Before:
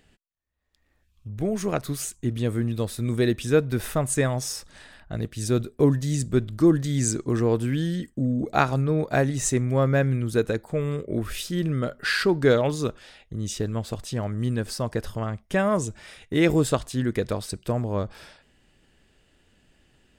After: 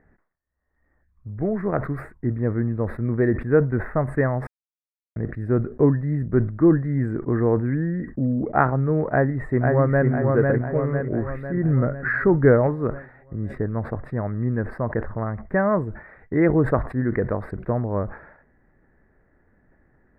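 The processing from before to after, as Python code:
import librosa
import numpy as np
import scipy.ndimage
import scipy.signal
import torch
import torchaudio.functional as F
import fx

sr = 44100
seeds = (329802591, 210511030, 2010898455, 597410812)

y = fx.echo_throw(x, sr, start_s=9.1, length_s=0.98, ms=500, feedback_pct=55, wet_db=-3.0)
y = fx.low_shelf(y, sr, hz=160.0, db=8.5, at=(11.64, 12.67))
y = fx.edit(y, sr, fx.silence(start_s=4.47, length_s=0.69), tone=tone)
y = scipy.signal.sosfilt(scipy.signal.ellip(4, 1.0, 40, 1900.0, 'lowpass', fs=sr, output='sos'), y)
y = fx.sustainer(y, sr, db_per_s=120.0)
y = y * 10.0 ** (2.5 / 20.0)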